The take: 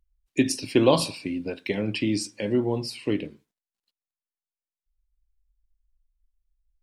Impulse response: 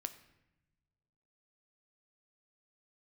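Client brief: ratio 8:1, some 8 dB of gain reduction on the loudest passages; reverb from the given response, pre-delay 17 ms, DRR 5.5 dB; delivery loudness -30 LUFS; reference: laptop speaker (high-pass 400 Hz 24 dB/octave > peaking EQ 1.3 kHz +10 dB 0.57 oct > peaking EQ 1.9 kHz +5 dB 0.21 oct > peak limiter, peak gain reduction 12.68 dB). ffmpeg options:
-filter_complex "[0:a]acompressor=threshold=0.0708:ratio=8,asplit=2[s0][s1];[1:a]atrim=start_sample=2205,adelay=17[s2];[s1][s2]afir=irnorm=-1:irlink=0,volume=0.668[s3];[s0][s3]amix=inputs=2:normalize=0,highpass=f=400:w=0.5412,highpass=f=400:w=1.3066,equalizer=f=1300:t=o:w=0.57:g=10,equalizer=f=1900:t=o:w=0.21:g=5,volume=2.24,alimiter=limit=0.0891:level=0:latency=1"

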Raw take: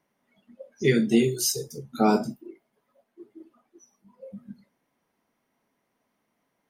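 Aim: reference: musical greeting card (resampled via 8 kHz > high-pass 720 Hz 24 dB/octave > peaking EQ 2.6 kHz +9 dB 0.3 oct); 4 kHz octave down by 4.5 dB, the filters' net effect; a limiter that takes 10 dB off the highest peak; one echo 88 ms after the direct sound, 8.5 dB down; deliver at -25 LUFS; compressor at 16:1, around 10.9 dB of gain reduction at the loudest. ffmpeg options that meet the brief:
-af "equalizer=f=4000:t=o:g=-8,acompressor=threshold=0.0501:ratio=16,alimiter=level_in=1.06:limit=0.0631:level=0:latency=1,volume=0.944,aecho=1:1:88:0.376,aresample=8000,aresample=44100,highpass=f=720:w=0.5412,highpass=f=720:w=1.3066,equalizer=f=2600:t=o:w=0.3:g=9,volume=12.6"

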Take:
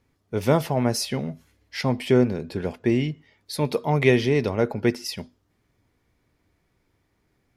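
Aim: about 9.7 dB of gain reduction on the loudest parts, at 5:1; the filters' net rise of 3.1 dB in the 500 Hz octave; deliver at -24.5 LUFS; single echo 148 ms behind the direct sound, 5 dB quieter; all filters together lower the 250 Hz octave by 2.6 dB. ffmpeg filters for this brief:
-af "equalizer=f=250:t=o:g=-6,equalizer=f=500:t=o:g=6,acompressor=threshold=0.0708:ratio=5,aecho=1:1:148:0.562,volume=1.58"

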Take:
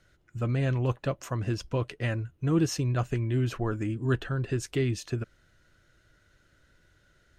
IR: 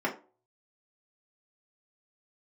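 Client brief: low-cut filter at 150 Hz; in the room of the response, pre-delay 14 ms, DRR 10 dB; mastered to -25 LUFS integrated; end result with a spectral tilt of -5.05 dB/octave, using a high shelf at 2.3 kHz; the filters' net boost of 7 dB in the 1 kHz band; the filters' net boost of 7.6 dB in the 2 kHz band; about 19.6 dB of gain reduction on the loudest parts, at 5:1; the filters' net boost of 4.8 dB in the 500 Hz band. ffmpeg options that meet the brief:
-filter_complex "[0:a]highpass=150,equalizer=f=500:t=o:g=5,equalizer=f=1000:t=o:g=5,equalizer=f=2000:t=o:g=5.5,highshelf=f=2300:g=4.5,acompressor=threshold=0.00794:ratio=5,asplit=2[s0][s1];[1:a]atrim=start_sample=2205,adelay=14[s2];[s1][s2]afir=irnorm=-1:irlink=0,volume=0.106[s3];[s0][s3]amix=inputs=2:normalize=0,volume=9.44"

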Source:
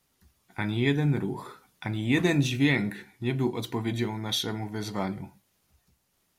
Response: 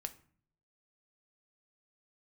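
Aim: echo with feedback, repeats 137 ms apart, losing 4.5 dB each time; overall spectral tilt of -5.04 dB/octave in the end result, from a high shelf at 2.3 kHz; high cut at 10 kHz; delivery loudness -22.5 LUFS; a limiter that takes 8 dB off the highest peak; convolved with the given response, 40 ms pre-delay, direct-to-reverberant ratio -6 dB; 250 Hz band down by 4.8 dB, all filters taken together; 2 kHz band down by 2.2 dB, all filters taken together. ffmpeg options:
-filter_complex "[0:a]lowpass=10000,equalizer=f=250:t=o:g=-6.5,equalizer=f=2000:t=o:g=-5,highshelf=f=2300:g=5,alimiter=limit=0.0794:level=0:latency=1,aecho=1:1:137|274|411|548|685|822|959|1096|1233:0.596|0.357|0.214|0.129|0.0772|0.0463|0.0278|0.0167|0.01,asplit=2[s0][s1];[1:a]atrim=start_sample=2205,adelay=40[s2];[s1][s2]afir=irnorm=-1:irlink=0,volume=2.66[s3];[s0][s3]amix=inputs=2:normalize=0,volume=1.26"

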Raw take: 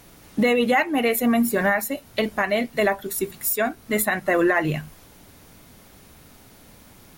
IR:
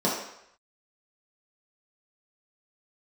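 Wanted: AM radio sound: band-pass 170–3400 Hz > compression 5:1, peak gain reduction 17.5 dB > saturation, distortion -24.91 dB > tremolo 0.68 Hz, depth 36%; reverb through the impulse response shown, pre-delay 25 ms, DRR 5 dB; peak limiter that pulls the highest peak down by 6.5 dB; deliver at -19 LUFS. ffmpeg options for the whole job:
-filter_complex "[0:a]alimiter=limit=0.168:level=0:latency=1,asplit=2[s0][s1];[1:a]atrim=start_sample=2205,adelay=25[s2];[s1][s2]afir=irnorm=-1:irlink=0,volume=0.119[s3];[s0][s3]amix=inputs=2:normalize=0,highpass=170,lowpass=3400,acompressor=threshold=0.0178:ratio=5,asoftclip=threshold=0.0531,tremolo=f=0.68:d=0.36,volume=11.2"

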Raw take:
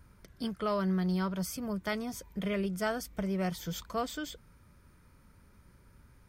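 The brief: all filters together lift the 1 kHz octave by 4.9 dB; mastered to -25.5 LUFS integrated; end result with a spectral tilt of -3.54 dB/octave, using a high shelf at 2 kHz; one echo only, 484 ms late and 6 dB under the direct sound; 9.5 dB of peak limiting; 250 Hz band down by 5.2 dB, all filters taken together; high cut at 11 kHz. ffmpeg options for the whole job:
-af "lowpass=11000,equalizer=f=250:t=o:g=-8.5,equalizer=f=1000:t=o:g=5,highshelf=f=2000:g=7,alimiter=level_in=1.12:limit=0.0631:level=0:latency=1,volume=0.891,aecho=1:1:484:0.501,volume=3.35"

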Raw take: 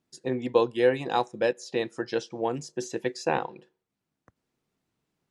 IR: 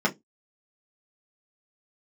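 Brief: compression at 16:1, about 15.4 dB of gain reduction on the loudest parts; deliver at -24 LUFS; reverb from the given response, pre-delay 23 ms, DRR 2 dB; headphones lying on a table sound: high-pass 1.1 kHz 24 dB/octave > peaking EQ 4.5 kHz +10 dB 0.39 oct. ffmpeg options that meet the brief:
-filter_complex "[0:a]acompressor=threshold=0.0282:ratio=16,asplit=2[s0][s1];[1:a]atrim=start_sample=2205,adelay=23[s2];[s1][s2]afir=irnorm=-1:irlink=0,volume=0.178[s3];[s0][s3]amix=inputs=2:normalize=0,highpass=f=1100:w=0.5412,highpass=f=1100:w=1.3066,equalizer=f=4500:t=o:w=0.39:g=10,volume=7.94"

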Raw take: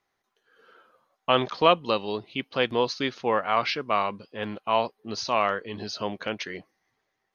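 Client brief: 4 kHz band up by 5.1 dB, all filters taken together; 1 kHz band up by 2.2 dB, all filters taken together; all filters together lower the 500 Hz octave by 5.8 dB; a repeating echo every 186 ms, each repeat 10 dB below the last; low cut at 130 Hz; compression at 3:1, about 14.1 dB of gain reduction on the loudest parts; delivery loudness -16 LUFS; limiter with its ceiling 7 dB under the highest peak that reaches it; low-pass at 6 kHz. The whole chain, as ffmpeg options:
-af "highpass=130,lowpass=6000,equalizer=f=500:t=o:g=-9,equalizer=f=1000:t=o:g=4.5,equalizer=f=4000:t=o:g=7.5,acompressor=threshold=0.0224:ratio=3,alimiter=limit=0.0708:level=0:latency=1,aecho=1:1:186|372|558|744:0.316|0.101|0.0324|0.0104,volume=10.6"

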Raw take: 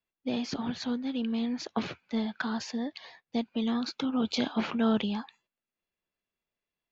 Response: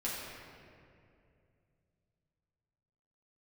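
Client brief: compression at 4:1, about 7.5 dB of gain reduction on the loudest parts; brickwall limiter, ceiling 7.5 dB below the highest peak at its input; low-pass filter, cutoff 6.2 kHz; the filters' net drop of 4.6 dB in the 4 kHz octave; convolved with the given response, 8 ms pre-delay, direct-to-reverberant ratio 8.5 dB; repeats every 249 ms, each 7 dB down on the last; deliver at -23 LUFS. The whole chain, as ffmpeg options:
-filter_complex "[0:a]lowpass=6200,equalizer=f=4000:t=o:g=-5,acompressor=threshold=0.0316:ratio=4,alimiter=level_in=1.33:limit=0.0631:level=0:latency=1,volume=0.75,aecho=1:1:249|498|747|996|1245:0.447|0.201|0.0905|0.0407|0.0183,asplit=2[s0][s1];[1:a]atrim=start_sample=2205,adelay=8[s2];[s1][s2]afir=irnorm=-1:irlink=0,volume=0.224[s3];[s0][s3]amix=inputs=2:normalize=0,volume=3.98"

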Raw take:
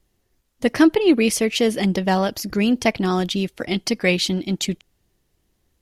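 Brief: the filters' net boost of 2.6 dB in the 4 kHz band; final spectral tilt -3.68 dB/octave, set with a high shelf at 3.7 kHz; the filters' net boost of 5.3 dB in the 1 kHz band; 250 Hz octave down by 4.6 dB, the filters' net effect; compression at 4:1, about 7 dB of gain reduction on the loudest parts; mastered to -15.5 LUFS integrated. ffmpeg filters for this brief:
-af "equalizer=f=250:t=o:g=-7,equalizer=f=1000:t=o:g=8,highshelf=f=3700:g=-5,equalizer=f=4000:t=o:g=6,acompressor=threshold=0.1:ratio=4,volume=2.99"

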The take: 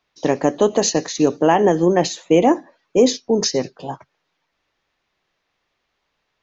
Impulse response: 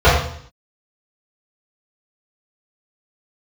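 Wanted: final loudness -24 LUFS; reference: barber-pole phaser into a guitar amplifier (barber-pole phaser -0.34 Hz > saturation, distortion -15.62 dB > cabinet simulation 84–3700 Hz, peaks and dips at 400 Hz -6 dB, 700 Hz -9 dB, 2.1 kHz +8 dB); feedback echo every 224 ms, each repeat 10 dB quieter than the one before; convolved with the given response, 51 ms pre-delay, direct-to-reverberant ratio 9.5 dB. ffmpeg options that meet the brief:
-filter_complex "[0:a]aecho=1:1:224|448|672|896:0.316|0.101|0.0324|0.0104,asplit=2[s0][s1];[1:a]atrim=start_sample=2205,adelay=51[s2];[s1][s2]afir=irnorm=-1:irlink=0,volume=0.0119[s3];[s0][s3]amix=inputs=2:normalize=0,asplit=2[s4][s5];[s5]afreqshift=-0.34[s6];[s4][s6]amix=inputs=2:normalize=1,asoftclip=threshold=0.282,highpass=84,equalizer=f=400:t=q:w=4:g=-6,equalizer=f=700:t=q:w=4:g=-9,equalizer=f=2100:t=q:w=4:g=8,lowpass=f=3700:w=0.5412,lowpass=f=3700:w=1.3066,volume=1.06"

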